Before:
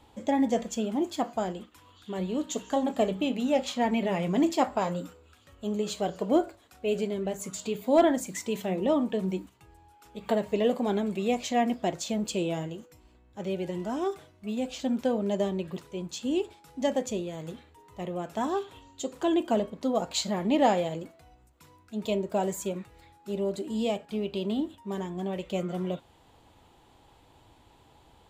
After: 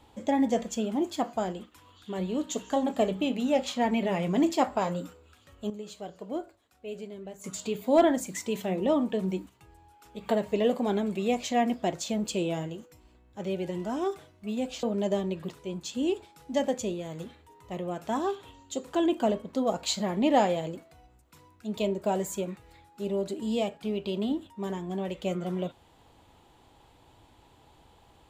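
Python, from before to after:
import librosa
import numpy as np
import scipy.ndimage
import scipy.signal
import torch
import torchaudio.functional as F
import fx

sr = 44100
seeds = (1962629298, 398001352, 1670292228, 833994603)

y = fx.edit(x, sr, fx.clip_gain(start_s=5.7, length_s=1.74, db=-10.5),
    fx.cut(start_s=14.83, length_s=0.28), tone=tone)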